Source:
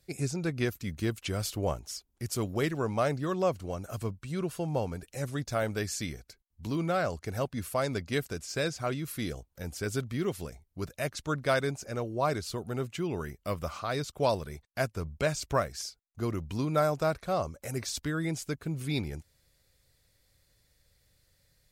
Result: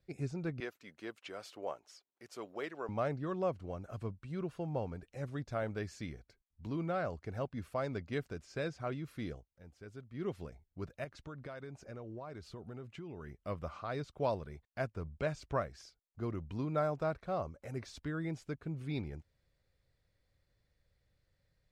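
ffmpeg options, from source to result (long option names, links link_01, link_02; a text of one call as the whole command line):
ffmpeg -i in.wav -filter_complex "[0:a]asettb=1/sr,asplit=3[link_01][link_02][link_03];[link_01]atrim=end=0.604[link_04];[link_02]atrim=start=0.6:end=2.89,asetpts=PTS-STARTPTS,afade=type=in:duration=0.004:curve=qsin,afade=type=out:start_time=2.286:duration=0.004:curve=qsin,highpass=470[link_05];[link_03]atrim=start=2.886[link_06];[link_04][link_05]acrossfade=duration=0.004:curve1=hsin:curve2=qsin[link_07];[link_07][link_06]acrossfade=duration=0.004:curve1=qsin:curve2=hsin,asettb=1/sr,asplit=3[link_08][link_09][link_10];[link_08]atrim=end=11.044[link_11];[link_09]atrim=start=11.04:end=13.31,asetpts=PTS-STARTPTS,afade=type=in:duration=0.004:curve=qsin,afade=type=out:start_time=2.266:duration=0.004:curve=qsin,acompressor=threshold=-35dB:ratio=10:attack=3.2:release=140:knee=1:detection=peak[link_12];[link_10]atrim=start=13.306[link_13];[link_11][link_12]acrossfade=duration=0.004:curve1=hsin:curve2=qsin[link_14];[link_14][link_13]acrossfade=duration=0.004:curve1=qsin:curve2=hsin,asplit=3[link_15][link_16][link_17];[link_15]atrim=end=9.47,asetpts=PTS-STARTPTS,afade=type=out:start_time=9.32:duration=0.15:silence=0.281838[link_18];[link_16]atrim=start=9.47:end=10.11,asetpts=PTS-STARTPTS,volume=-11dB[link_19];[link_17]atrim=start=10.11,asetpts=PTS-STARTPTS,afade=type=in:duration=0.15:silence=0.281838[link_20];[link_18][link_19][link_20]concat=n=3:v=0:a=1,lowpass=frequency=3000:poles=1,aemphasis=mode=reproduction:type=cd,volume=-6.5dB" out.wav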